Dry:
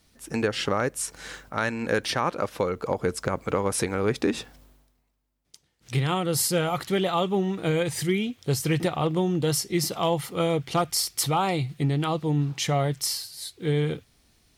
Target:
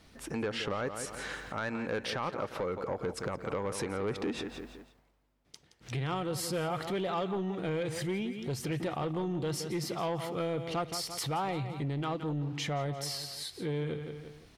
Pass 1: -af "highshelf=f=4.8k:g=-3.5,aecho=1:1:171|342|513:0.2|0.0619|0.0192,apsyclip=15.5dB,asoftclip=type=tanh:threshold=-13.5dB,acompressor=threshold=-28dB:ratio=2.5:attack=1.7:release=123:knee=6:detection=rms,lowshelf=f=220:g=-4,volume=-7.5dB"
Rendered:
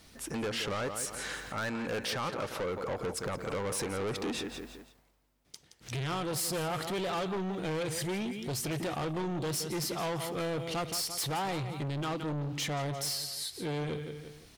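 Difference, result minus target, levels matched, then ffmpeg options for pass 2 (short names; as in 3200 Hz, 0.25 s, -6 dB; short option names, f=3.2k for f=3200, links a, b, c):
soft clip: distortion +10 dB; 8000 Hz band +5.0 dB
-af "highshelf=f=4.8k:g=-14.5,aecho=1:1:171|342|513:0.2|0.0619|0.0192,apsyclip=15.5dB,asoftclip=type=tanh:threshold=-3.5dB,acompressor=threshold=-28dB:ratio=2.5:attack=1.7:release=123:knee=6:detection=rms,lowshelf=f=220:g=-4,volume=-7.5dB"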